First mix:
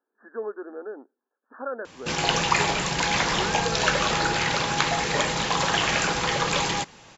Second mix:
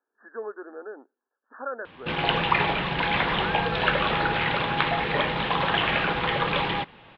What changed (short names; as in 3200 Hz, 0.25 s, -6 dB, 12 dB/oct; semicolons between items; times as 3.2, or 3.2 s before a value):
speech: add tilt +2.5 dB/oct; master: add steep low-pass 3600 Hz 48 dB/oct